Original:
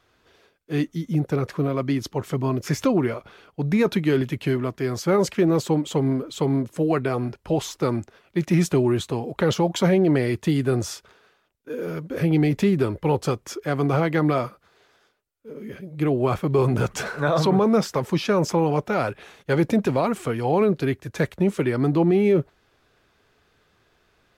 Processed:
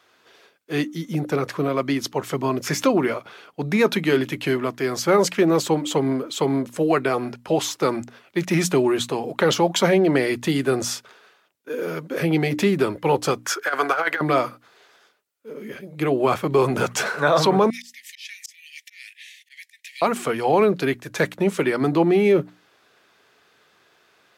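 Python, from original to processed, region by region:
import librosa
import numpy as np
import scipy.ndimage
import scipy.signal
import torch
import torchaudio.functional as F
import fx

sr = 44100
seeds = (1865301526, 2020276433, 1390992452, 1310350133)

y = fx.chain(x, sr, fx.highpass(hz=570.0, slope=12),
    fx.peak_eq(hz=1500.0, db=12.5, octaves=0.39),
    fx.over_compress(threshold_db=-25.0, ratio=-0.5), at=(13.44, 14.21))
y = fx.chain(y, sr, fx.cheby1_highpass(hz=1800.0, order=8),
    fx.auto_swell(attack_ms=324.0), at=(17.7, 20.02))
y = scipy.signal.sosfilt(scipy.signal.butter(2, 160.0, 'highpass', fs=sr, output='sos'), y)
y = fx.low_shelf(y, sr, hz=480.0, db=-7.0)
y = fx.hum_notches(y, sr, base_hz=60, count=5)
y = F.gain(torch.from_numpy(y), 6.5).numpy()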